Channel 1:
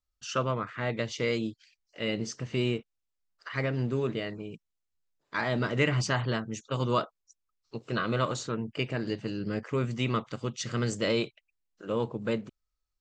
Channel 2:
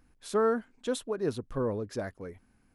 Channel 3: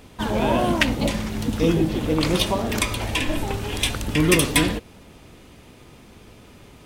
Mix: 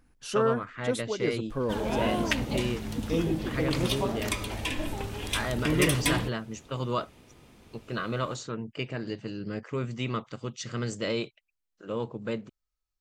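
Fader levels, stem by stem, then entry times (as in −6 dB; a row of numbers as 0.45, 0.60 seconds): −2.5, +0.5, −8.0 decibels; 0.00, 0.00, 1.50 seconds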